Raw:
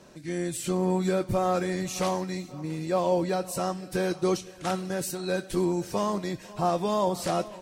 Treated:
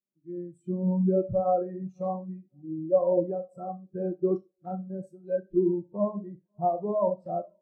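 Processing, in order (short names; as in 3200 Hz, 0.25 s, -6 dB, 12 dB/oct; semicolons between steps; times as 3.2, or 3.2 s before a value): Wiener smoothing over 9 samples; Schroeder reverb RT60 0.49 s, combs from 28 ms, DRR 4.5 dB; spectral expander 2.5:1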